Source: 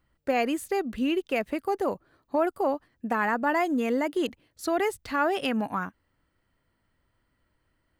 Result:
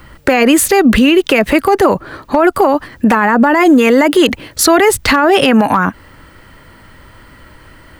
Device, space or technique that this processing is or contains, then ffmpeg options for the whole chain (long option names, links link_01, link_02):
mastering chain: -filter_complex "[0:a]bandreject=frequency=700:width=14,asettb=1/sr,asplit=3[link_01][link_02][link_03];[link_01]atrim=end=1.604[link_04];[link_02]atrim=start=1.6:end=2.62,asetpts=PTS-STARTPTS,afade=type=in:duration=0.004:curve=qsin,afade=type=out:start_time=1.016:duration=0.004:curve=qsin,highshelf=frequency=9200:gain=-5.5[link_05];[link_03]atrim=start=2.616[link_06];[link_04][link_05]acrossfade=duration=0.004:curve1=hsin:curve2=qsin[link_07];[link_07][link_06]acrossfade=duration=0.004:curve1=qsin:curve2=hsin,equalizer=frequency=1400:width_type=o:width=2.5:gain=3,acrossover=split=320|970[link_08][link_09][link_10];[link_08]acompressor=threshold=-35dB:ratio=4[link_11];[link_09]acompressor=threshold=-32dB:ratio=4[link_12];[link_10]acompressor=threshold=-32dB:ratio=4[link_13];[link_11][link_12][link_13]amix=inputs=3:normalize=0,acompressor=threshold=-34dB:ratio=2,asoftclip=type=hard:threshold=-24dB,alimiter=level_in=33dB:limit=-1dB:release=50:level=0:latency=1,volume=-1dB"